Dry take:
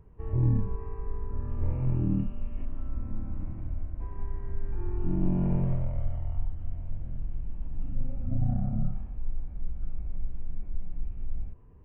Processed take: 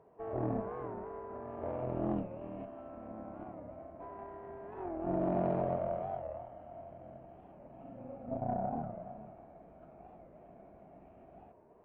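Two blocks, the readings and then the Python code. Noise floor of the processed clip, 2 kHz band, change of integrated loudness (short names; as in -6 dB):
-59 dBFS, n/a, -5.5 dB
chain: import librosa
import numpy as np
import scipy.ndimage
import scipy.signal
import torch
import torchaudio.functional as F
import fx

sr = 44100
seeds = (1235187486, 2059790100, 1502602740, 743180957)

p1 = scipy.signal.sosfilt(scipy.signal.butter(2, 400.0, 'highpass', fs=sr, output='sos'), x)
p2 = fx.cheby_harmonics(p1, sr, harmonics=(6,), levels_db=(-17,), full_scale_db=-27.5)
p3 = fx.lowpass(p2, sr, hz=1000.0, slope=6)
p4 = fx.peak_eq(p3, sr, hz=670.0, db=14.5, octaves=0.35)
p5 = p4 + fx.echo_single(p4, sr, ms=422, db=-12.5, dry=0)
p6 = fx.record_warp(p5, sr, rpm=45.0, depth_cents=160.0)
y = p6 * 10.0 ** (4.5 / 20.0)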